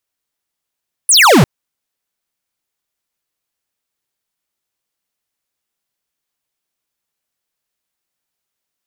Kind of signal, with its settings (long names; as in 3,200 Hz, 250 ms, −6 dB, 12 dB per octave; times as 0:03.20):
single falling chirp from 11,000 Hz, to 110 Hz, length 0.35 s square, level −7 dB